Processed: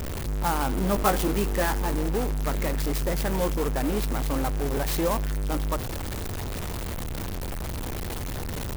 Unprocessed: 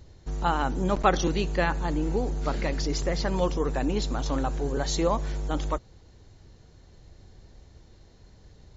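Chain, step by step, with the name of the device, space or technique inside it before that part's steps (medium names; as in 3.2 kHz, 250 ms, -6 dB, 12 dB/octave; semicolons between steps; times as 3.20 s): 0.68–2.04 s: doubling 15 ms -5.5 dB; early CD player with a faulty converter (jump at every zero crossing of -21.5 dBFS; sampling jitter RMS 0.052 ms); trim -4 dB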